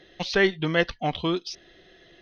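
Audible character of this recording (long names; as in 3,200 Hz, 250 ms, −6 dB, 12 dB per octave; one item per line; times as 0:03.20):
background noise floor −55 dBFS
spectral slope −3.0 dB per octave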